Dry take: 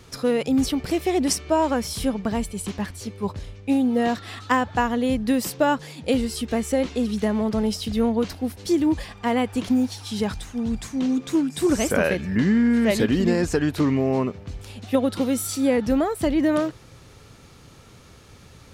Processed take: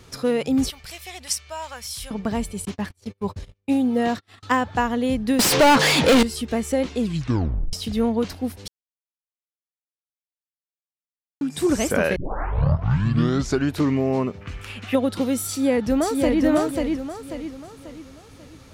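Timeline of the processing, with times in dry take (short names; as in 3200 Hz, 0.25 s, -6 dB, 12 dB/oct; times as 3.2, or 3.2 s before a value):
0.7–2.11 passive tone stack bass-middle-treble 10-0-10
2.65–4.43 gate -35 dBFS, range -34 dB
5.39–6.23 overdrive pedal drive 38 dB, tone 4400 Hz, clips at -7.5 dBFS
6.99 tape stop 0.74 s
8.68–11.41 mute
12.16 tape start 1.57 s
14.41–14.94 band shelf 1800 Hz +11.5 dB
15.47–16.42 echo throw 0.54 s, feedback 40%, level -3 dB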